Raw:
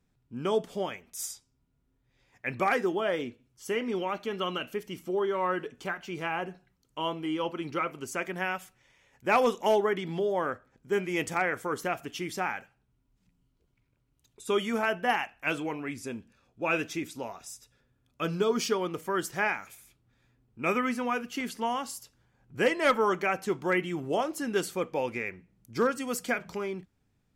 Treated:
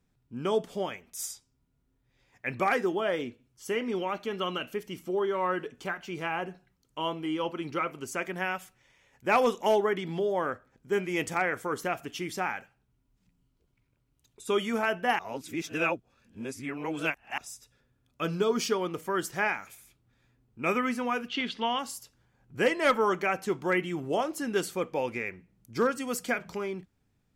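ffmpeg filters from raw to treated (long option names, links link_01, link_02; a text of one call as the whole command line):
ffmpeg -i in.wav -filter_complex "[0:a]asettb=1/sr,asplit=3[link_01][link_02][link_03];[link_01]atrim=end=21.284[link_04];[link_02]atrim=start=21.28:end=21.79,asetpts=PTS-STARTPTS,afade=type=in:duration=0.004:curve=qsin,afade=type=out:start_time=0.506:duration=0.004:curve=qsin,lowpass=frequency=3500:width_type=q:width=3.7[link_05];[link_03]atrim=start=21.786[link_06];[link_04][link_05]acrossfade=duration=0.004:curve1=hsin:curve2=qsin[link_07];[link_07][link_06]acrossfade=duration=0.004:curve1=qsin:curve2=hsin,asplit=3[link_08][link_09][link_10];[link_08]atrim=end=15.192[link_11];[link_09]atrim=start=15.188:end=17.382,asetpts=PTS-STARTPTS,areverse[link_12];[link_10]atrim=start=17.378[link_13];[link_11][link_12]acrossfade=duration=0.004:curve1=hsin:curve2=hsin[link_14];[link_14][link_13]acrossfade=duration=0.004:curve1=hsin:curve2=hsin" out.wav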